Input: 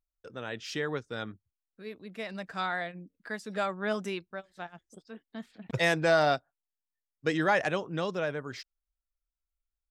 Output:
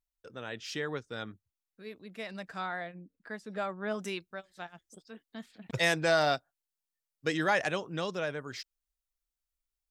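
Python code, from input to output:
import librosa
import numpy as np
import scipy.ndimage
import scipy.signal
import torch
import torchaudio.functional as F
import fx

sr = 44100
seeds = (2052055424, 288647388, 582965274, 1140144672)

y = fx.high_shelf(x, sr, hz=2700.0, db=fx.steps((0.0, 3.0), (2.57, -7.0), (3.98, 7.0)))
y = F.gain(torch.from_numpy(y), -3.0).numpy()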